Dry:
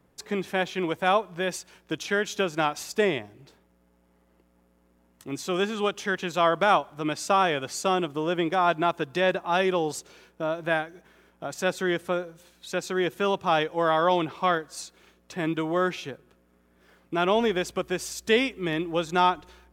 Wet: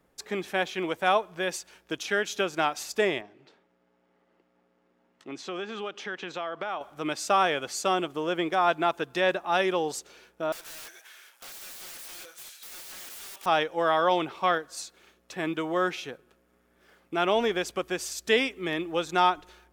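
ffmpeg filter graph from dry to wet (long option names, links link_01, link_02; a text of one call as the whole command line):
ffmpeg -i in.wav -filter_complex "[0:a]asettb=1/sr,asplit=3[link_01][link_02][link_03];[link_01]atrim=end=3.214[link_04];[link_02]atrim=start=3.21:end=6.81,asetpts=PTS-STARTPTS,afade=type=in:duration=0.004:curve=qsin,afade=type=out:start_time=3.596:duration=0.004:curve=qsin,acompressor=threshold=-29dB:ratio=4:attack=3.2:release=140:knee=1:detection=peak,highpass=160,lowpass=4200[link_05];[link_03]atrim=start=6.806[link_06];[link_04][link_05]acrossfade=duration=0.004:curve1=hsin:curve2=qsin[link_07];[link_07][link_06]acrossfade=duration=0.004:curve1=qsin:curve2=hsin,asettb=1/sr,asplit=3[link_08][link_09][link_10];[link_08]atrim=end=10.524[link_11];[link_09]atrim=start=10.52:end=13.46,asetpts=PTS-STARTPTS,afade=type=in:duration=0.004:curve=qsin,afade=type=out:start_time=2.936:duration=0.004:curve=qsin,aderivative,asplit=2[link_12][link_13];[link_13]highpass=frequency=720:poles=1,volume=27dB,asoftclip=type=tanh:threshold=-23.5dB[link_14];[link_12][link_14]amix=inputs=2:normalize=0,lowpass=frequency=4400:poles=1,volume=-6dB,aeval=exprs='(mod(79.4*val(0)+1,2)-1)/79.4':channel_layout=same[link_15];[link_10]atrim=start=13.456[link_16];[link_11][link_15]acrossfade=duration=0.004:curve1=hsin:curve2=qsin[link_17];[link_17][link_16]acrossfade=duration=0.004:curve1=qsin:curve2=hsin,equalizer=frequency=110:width_type=o:width=2.4:gain=-8.5,bandreject=frequency=1000:width=17" out.wav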